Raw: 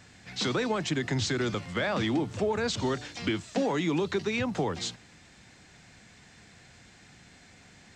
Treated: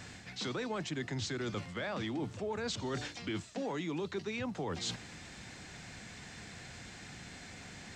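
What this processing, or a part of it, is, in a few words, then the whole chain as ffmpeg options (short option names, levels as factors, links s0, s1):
compression on the reversed sound: -af "areverse,acompressor=threshold=0.00794:ratio=5,areverse,volume=1.88"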